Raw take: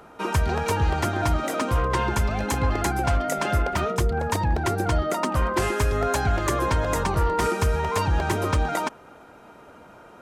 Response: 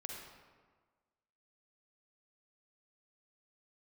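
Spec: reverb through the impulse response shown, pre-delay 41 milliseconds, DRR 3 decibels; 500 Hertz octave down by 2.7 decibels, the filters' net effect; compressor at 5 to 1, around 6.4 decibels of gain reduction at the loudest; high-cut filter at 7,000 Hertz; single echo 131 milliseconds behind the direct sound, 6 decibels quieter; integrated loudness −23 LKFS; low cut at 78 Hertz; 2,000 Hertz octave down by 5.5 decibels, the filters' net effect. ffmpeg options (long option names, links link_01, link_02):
-filter_complex "[0:a]highpass=78,lowpass=7000,equalizer=frequency=500:width_type=o:gain=-3,equalizer=frequency=2000:width_type=o:gain=-7.5,acompressor=threshold=-28dB:ratio=5,aecho=1:1:131:0.501,asplit=2[link_01][link_02];[1:a]atrim=start_sample=2205,adelay=41[link_03];[link_02][link_03]afir=irnorm=-1:irlink=0,volume=-1dB[link_04];[link_01][link_04]amix=inputs=2:normalize=0,volume=6dB"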